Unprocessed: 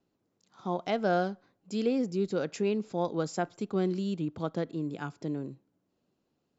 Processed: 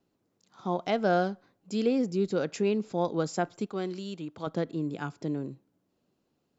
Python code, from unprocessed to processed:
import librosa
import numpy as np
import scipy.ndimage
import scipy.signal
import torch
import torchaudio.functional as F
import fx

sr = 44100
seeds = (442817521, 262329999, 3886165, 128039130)

y = fx.low_shelf(x, sr, hz=380.0, db=-11.5, at=(3.66, 4.47))
y = y * 10.0 ** (2.0 / 20.0)